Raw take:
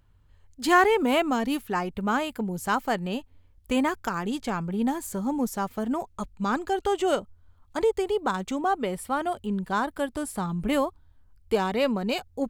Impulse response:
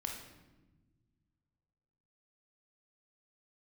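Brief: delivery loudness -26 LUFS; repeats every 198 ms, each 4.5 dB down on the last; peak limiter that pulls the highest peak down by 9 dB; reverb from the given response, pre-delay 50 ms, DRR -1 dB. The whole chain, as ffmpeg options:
-filter_complex "[0:a]alimiter=limit=0.141:level=0:latency=1,aecho=1:1:198|396|594|792|990|1188|1386|1584|1782:0.596|0.357|0.214|0.129|0.0772|0.0463|0.0278|0.0167|0.01,asplit=2[s0][s1];[1:a]atrim=start_sample=2205,adelay=50[s2];[s1][s2]afir=irnorm=-1:irlink=0,volume=1.12[s3];[s0][s3]amix=inputs=2:normalize=0,volume=0.708"

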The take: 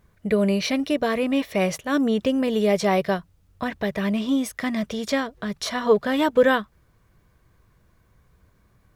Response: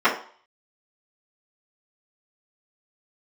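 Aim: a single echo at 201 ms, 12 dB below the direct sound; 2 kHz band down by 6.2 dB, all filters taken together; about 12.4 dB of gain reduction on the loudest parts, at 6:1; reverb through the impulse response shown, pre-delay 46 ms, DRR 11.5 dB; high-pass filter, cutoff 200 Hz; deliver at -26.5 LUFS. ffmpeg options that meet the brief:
-filter_complex "[0:a]highpass=200,equalizer=f=2000:t=o:g=-8,acompressor=threshold=0.0501:ratio=6,aecho=1:1:201:0.251,asplit=2[s0][s1];[1:a]atrim=start_sample=2205,adelay=46[s2];[s1][s2]afir=irnorm=-1:irlink=0,volume=0.0237[s3];[s0][s3]amix=inputs=2:normalize=0,volume=1.58"

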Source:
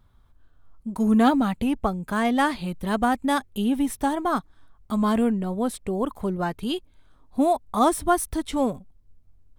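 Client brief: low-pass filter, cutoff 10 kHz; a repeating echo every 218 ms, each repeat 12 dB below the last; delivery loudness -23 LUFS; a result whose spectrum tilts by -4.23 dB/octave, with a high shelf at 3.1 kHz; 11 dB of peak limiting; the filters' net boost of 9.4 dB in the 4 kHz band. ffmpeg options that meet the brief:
-af "lowpass=10000,highshelf=f=3100:g=6,equalizer=f=4000:t=o:g=8,alimiter=limit=0.158:level=0:latency=1,aecho=1:1:218|436|654:0.251|0.0628|0.0157,volume=1.41"

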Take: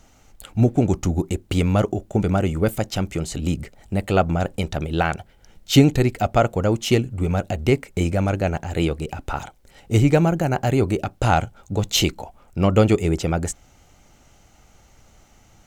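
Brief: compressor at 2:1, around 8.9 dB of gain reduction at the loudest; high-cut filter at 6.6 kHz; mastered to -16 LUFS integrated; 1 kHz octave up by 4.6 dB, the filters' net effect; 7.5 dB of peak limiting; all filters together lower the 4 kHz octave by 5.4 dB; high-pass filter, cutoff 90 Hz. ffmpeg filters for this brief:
-af "highpass=90,lowpass=6600,equalizer=f=1000:t=o:g=7.5,equalizer=f=4000:t=o:g=-8,acompressor=threshold=0.0562:ratio=2,volume=4.73,alimiter=limit=0.794:level=0:latency=1"

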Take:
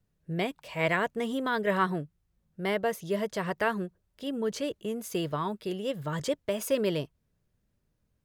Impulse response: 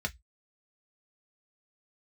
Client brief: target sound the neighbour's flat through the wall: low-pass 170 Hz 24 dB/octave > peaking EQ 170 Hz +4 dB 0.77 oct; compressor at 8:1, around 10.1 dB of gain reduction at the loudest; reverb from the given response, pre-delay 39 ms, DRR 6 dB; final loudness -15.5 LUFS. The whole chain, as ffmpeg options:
-filter_complex "[0:a]acompressor=threshold=0.0251:ratio=8,asplit=2[s0][s1];[1:a]atrim=start_sample=2205,adelay=39[s2];[s1][s2]afir=irnorm=-1:irlink=0,volume=0.299[s3];[s0][s3]amix=inputs=2:normalize=0,lowpass=f=170:w=0.5412,lowpass=f=170:w=1.3066,equalizer=f=170:t=o:w=0.77:g=4,volume=26.6"

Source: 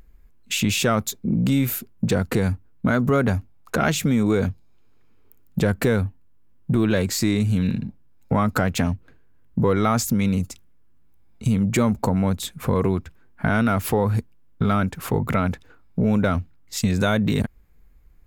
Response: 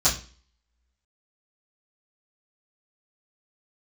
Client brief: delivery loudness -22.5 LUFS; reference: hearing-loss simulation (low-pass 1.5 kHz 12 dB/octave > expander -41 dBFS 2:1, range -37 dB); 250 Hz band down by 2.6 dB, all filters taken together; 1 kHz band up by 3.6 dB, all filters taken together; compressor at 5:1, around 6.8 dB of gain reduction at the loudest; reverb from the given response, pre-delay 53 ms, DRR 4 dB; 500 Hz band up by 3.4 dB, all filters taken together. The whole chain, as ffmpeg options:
-filter_complex "[0:a]equalizer=f=250:t=o:g=-4.5,equalizer=f=500:t=o:g=4,equalizer=f=1000:t=o:g=5.5,acompressor=threshold=0.0891:ratio=5,asplit=2[s0][s1];[1:a]atrim=start_sample=2205,adelay=53[s2];[s1][s2]afir=irnorm=-1:irlink=0,volume=0.126[s3];[s0][s3]amix=inputs=2:normalize=0,lowpass=1500,agate=range=0.0141:threshold=0.00891:ratio=2,volume=1.41"

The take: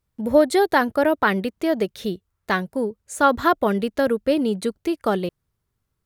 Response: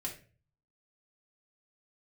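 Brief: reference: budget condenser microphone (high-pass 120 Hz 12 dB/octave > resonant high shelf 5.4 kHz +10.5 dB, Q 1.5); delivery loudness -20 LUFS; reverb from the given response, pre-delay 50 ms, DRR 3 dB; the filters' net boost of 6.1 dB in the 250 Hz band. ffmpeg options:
-filter_complex "[0:a]equalizer=f=250:t=o:g=8,asplit=2[s0][s1];[1:a]atrim=start_sample=2205,adelay=50[s2];[s1][s2]afir=irnorm=-1:irlink=0,volume=0.75[s3];[s0][s3]amix=inputs=2:normalize=0,highpass=120,highshelf=f=5400:t=q:w=1.5:g=10.5,volume=0.631"

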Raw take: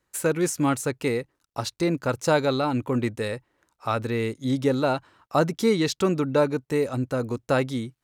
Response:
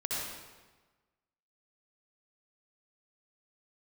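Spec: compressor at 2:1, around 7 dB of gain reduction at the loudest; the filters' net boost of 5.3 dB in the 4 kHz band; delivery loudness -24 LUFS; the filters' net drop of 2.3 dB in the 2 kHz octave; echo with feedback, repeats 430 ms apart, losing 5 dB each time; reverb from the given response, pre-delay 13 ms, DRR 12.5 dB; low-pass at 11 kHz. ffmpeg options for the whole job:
-filter_complex "[0:a]lowpass=11000,equalizer=f=2000:t=o:g=-5,equalizer=f=4000:t=o:g=7,acompressor=threshold=0.0355:ratio=2,aecho=1:1:430|860|1290|1720|2150|2580|3010:0.562|0.315|0.176|0.0988|0.0553|0.031|0.0173,asplit=2[s0][s1];[1:a]atrim=start_sample=2205,adelay=13[s2];[s1][s2]afir=irnorm=-1:irlink=0,volume=0.126[s3];[s0][s3]amix=inputs=2:normalize=0,volume=1.78"

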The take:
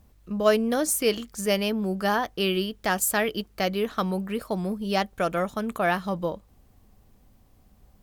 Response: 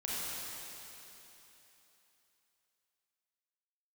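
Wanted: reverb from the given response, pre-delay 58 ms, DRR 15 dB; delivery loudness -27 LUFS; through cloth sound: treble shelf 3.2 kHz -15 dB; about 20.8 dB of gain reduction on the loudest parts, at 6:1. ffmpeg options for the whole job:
-filter_complex "[0:a]acompressor=threshold=0.0126:ratio=6,asplit=2[s0][s1];[1:a]atrim=start_sample=2205,adelay=58[s2];[s1][s2]afir=irnorm=-1:irlink=0,volume=0.106[s3];[s0][s3]amix=inputs=2:normalize=0,highshelf=f=3200:g=-15,volume=5.62"

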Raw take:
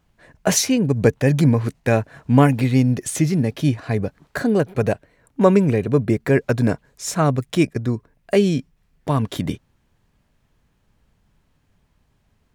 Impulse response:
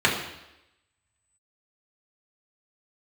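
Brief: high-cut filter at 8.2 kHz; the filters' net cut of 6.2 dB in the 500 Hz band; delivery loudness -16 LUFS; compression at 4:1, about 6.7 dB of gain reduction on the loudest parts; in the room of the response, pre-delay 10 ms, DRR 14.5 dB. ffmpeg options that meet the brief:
-filter_complex "[0:a]lowpass=8200,equalizer=f=500:t=o:g=-8,acompressor=threshold=0.112:ratio=4,asplit=2[s0][s1];[1:a]atrim=start_sample=2205,adelay=10[s2];[s1][s2]afir=irnorm=-1:irlink=0,volume=0.0237[s3];[s0][s3]amix=inputs=2:normalize=0,volume=2.82"

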